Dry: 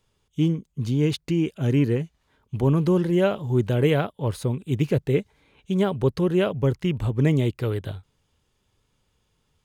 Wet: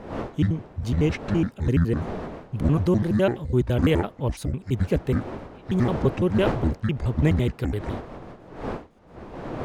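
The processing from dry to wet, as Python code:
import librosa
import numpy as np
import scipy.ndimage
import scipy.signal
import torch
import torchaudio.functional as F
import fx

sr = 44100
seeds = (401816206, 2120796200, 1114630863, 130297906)

y = fx.pitch_trill(x, sr, semitones=-9.0, every_ms=84)
y = fx.dmg_wind(y, sr, seeds[0], corner_hz=580.0, level_db=-36.0)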